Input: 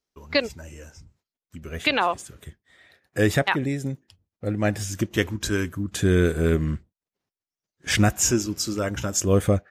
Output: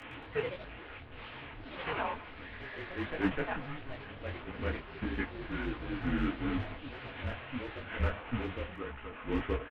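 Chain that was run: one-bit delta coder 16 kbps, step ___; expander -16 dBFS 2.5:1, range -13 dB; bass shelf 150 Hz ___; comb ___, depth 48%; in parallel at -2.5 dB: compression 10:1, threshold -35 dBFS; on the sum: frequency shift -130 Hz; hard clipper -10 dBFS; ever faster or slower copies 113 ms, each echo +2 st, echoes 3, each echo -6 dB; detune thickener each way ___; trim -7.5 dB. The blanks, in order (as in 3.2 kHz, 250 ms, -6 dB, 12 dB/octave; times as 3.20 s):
-21 dBFS, -5.5 dB, 5 ms, 54 cents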